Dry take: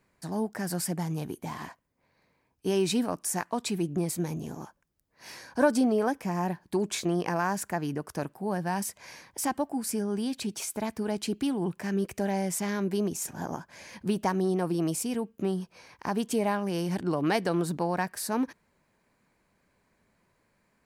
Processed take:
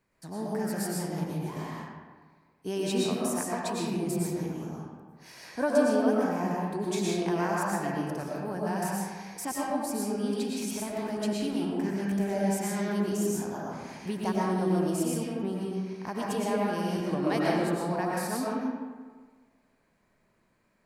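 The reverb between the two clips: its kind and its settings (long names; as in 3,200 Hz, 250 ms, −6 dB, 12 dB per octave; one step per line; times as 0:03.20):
comb and all-pass reverb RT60 1.5 s, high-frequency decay 0.55×, pre-delay 75 ms, DRR −5 dB
level −6 dB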